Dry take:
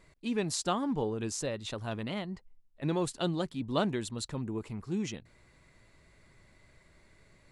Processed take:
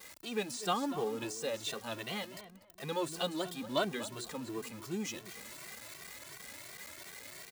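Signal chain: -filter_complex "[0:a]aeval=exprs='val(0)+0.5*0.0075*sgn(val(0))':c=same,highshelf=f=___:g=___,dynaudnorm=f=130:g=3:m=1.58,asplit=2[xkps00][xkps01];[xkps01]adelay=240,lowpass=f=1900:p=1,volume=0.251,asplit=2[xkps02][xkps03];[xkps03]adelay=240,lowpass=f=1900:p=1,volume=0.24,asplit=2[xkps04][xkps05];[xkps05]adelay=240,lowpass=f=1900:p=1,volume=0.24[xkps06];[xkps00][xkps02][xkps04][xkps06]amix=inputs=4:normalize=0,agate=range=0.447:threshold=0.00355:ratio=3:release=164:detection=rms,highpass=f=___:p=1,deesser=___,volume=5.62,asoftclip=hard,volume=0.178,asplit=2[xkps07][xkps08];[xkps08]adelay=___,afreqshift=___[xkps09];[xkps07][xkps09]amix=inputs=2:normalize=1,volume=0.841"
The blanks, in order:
5500, 8.5, 520, 0.65, 2.1, 2.8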